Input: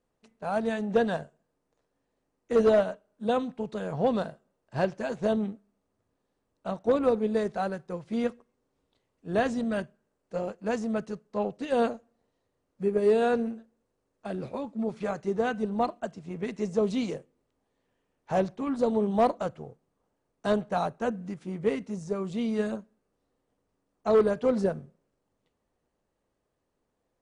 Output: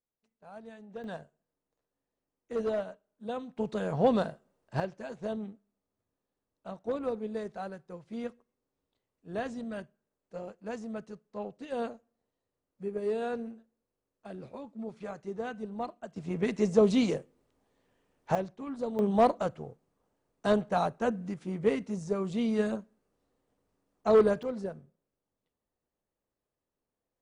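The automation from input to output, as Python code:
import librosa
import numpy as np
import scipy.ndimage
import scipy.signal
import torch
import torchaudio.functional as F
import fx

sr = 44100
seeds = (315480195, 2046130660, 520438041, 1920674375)

y = fx.gain(x, sr, db=fx.steps((0.0, -19.0), (1.04, -10.0), (3.57, 1.0), (4.8, -9.0), (16.16, 3.5), (18.35, -8.5), (18.99, 0.0), (24.43, -10.0)))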